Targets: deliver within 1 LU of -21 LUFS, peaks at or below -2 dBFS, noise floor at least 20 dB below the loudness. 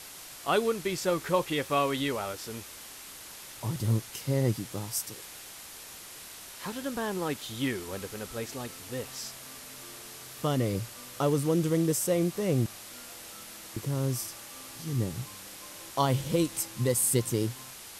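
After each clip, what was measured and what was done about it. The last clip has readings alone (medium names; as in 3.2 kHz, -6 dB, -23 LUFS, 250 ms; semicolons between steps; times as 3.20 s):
noise floor -46 dBFS; noise floor target -51 dBFS; loudness -30.5 LUFS; peak level -12.0 dBFS; loudness target -21.0 LUFS
-> noise reduction 6 dB, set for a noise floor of -46 dBFS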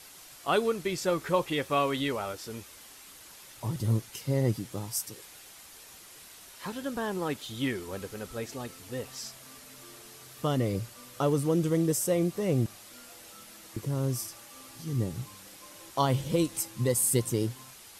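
noise floor -51 dBFS; loudness -30.5 LUFS; peak level -12.0 dBFS; loudness target -21.0 LUFS
-> trim +9.5 dB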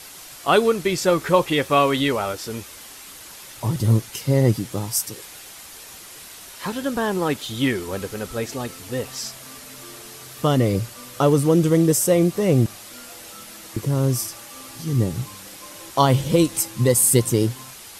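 loudness -21.0 LUFS; peak level -2.5 dBFS; noise floor -41 dBFS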